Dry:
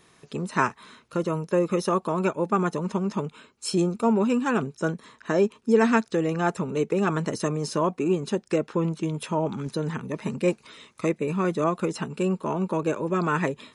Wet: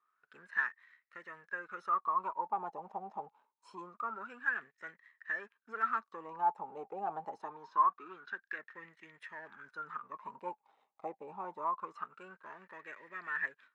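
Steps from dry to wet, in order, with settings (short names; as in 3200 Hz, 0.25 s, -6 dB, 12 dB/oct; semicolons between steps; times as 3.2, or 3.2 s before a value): sample leveller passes 2; wah 0.25 Hz 770–1900 Hz, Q 19; 7.42–8.59 speaker cabinet 180–5900 Hz, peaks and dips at 560 Hz -7 dB, 1600 Hz +8 dB, 3700 Hz +7 dB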